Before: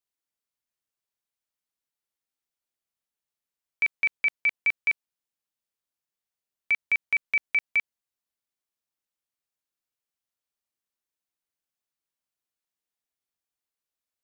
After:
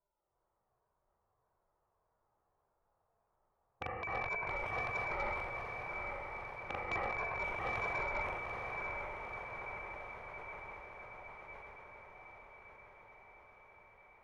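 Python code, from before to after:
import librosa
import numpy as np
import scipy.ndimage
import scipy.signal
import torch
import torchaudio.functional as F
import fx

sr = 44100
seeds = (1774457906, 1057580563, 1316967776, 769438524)

y = fx.spec_ripple(x, sr, per_octave=1.6, drift_hz=-1.7, depth_db=22)
y = scipy.signal.sosfilt(scipy.signal.butter(4, 1000.0, 'lowpass', fs=sr, output='sos'), y)
y = fx.rev_gated(y, sr, seeds[0], gate_ms=430, shape='rising', drr_db=-6.0)
y = fx.over_compress(y, sr, threshold_db=-45.0, ratio=-0.5)
y = fx.peak_eq(y, sr, hz=250.0, db=-15.0, octaves=0.91)
y = 10.0 ** (-35.0 / 20.0) * (np.abs((y / 10.0 ** (-35.0 / 20.0) + 3.0) % 4.0 - 2.0) - 1.0)
y = fx.echo_diffused(y, sr, ms=909, feedback_pct=66, wet_db=-4.5)
y = 10.0 ** (-36.0 / 20.0) * np.tanh(y / 10.0 ** (-36.0 / 20.0))
y = fx.sustainer(y, sr, db_per_s=29.0)
y = y * librosa.db_to_amplitude(8.5)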